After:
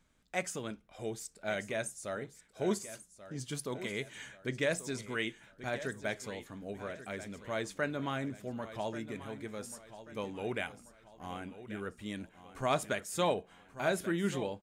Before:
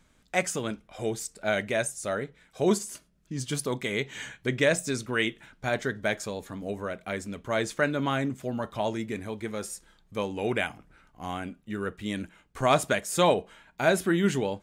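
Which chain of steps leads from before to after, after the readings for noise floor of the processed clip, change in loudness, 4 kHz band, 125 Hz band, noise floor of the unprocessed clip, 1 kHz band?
−64 dBFS, −8.5 dB, −8.5 dB, −8.5 dB, −65 dBFS, −8.5 dB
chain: repeating echo 1,136 ms, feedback 40%, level −13.5 dB
level −8.5 dB

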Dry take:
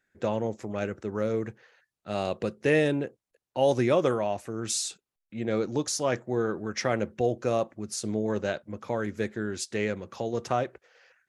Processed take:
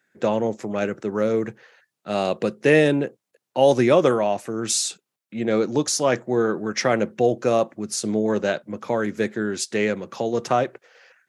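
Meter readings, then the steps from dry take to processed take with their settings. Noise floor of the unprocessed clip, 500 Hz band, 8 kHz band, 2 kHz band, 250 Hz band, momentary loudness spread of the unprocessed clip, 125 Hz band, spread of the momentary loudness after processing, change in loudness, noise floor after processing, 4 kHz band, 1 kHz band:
below −85 dBFS, +7.0 dB, +7.0 dB, +7.0 dB, +7.0 dB, 10 LU, +3.5 dB, 10 LU, +7.0 dB, −84 dBFS, +7.0 dB, +7.0 dB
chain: high-pass filter 130 Hz 24 dB per octave
level +7 dB

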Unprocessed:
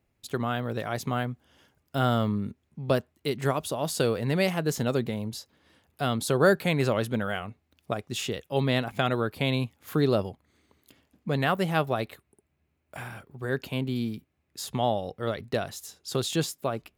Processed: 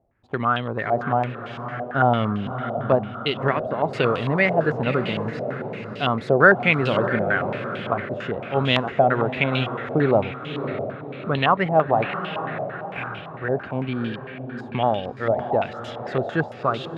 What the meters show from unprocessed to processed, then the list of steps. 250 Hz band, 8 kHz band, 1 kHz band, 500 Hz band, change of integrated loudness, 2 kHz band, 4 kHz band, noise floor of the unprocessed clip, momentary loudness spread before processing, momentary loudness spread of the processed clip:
+3.5 dB, below −20 dB, +9.5 dB, +6.5 dB, +5.5 dB, +10.0 dB, +3.5 dB, −75 dBFS, 13 LU, 12 LU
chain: feedback delay with all-pass diffusion 606 ms, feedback 51%, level −8 dB
low-pass on a step sequencer 8.9 Hz 690–3,000 Hz
level +2.5 dB

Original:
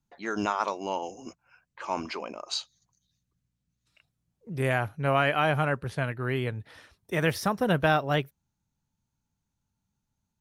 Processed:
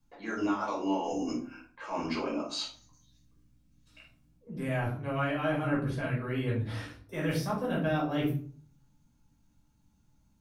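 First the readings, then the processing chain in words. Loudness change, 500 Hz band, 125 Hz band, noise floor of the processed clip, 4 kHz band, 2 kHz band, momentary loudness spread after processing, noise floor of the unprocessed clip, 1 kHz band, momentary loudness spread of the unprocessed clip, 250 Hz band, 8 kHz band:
−4.0 dB, −4.5 dB, −2.5 dB, −68 dBFS, −5.0 dB, −7.5 dB, 9 LU, −82 dBFS, −6.5 dB, 15 LU, +1.5 dB, −4.5 dB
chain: reversed playback
downward compressor 4 to 1, threshold −42 dBFS, peak gain reduction 19 dB
reversed playback
parametric band 290 Hz +8 dB 0.47 octaves
rectangular room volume 390 cubic metres, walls furnished, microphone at 5.4 metres

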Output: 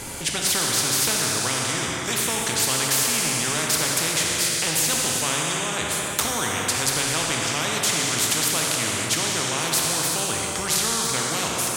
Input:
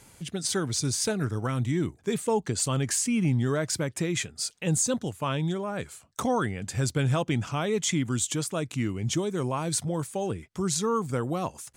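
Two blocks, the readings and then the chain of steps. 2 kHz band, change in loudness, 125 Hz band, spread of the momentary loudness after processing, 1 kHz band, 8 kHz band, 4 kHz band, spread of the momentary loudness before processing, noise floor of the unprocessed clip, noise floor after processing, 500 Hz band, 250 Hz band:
+12.0 dB, +7.0 dB, −4.5 dB, 4 LU, +6.0 dB, +10.5 dB, +13.0 dB, 6 LU, −59 dBFS, −28 dBFS, 0.0 dB, −3.0 dB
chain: dense smooth reverb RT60 2.1 s, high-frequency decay 1×, pre-delay 0 ms, DRR 1 dB
every bin compressed towards the loudest bin 4 to 1
level +8 dB

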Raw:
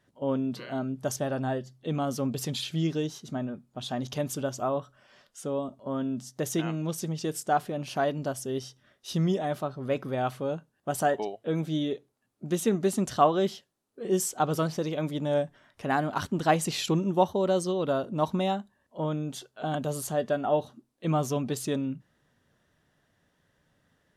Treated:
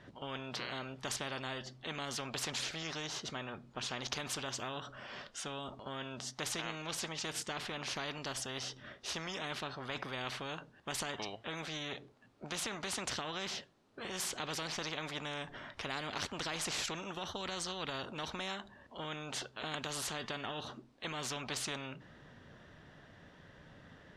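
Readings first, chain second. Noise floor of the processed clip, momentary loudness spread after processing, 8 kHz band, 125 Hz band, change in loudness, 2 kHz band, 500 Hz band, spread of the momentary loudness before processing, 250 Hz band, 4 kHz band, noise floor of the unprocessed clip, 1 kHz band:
−62 dBFS, 10 LU, −3.5 dB, −15.5 dB, −10.0 dB, −1.5 dB, −16.0 dB, 9 LU, −16.5 dB, +0.5 dB, −73 dBFS, −12.5 dB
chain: low-pass filter 4,100 Hz 12 dB per octave
brickwall limiter −19.5 dBFS, peak gain reduction 11.5 dB
every bin compressed towards the loudest bin 4 to 1
level +1.5 dB

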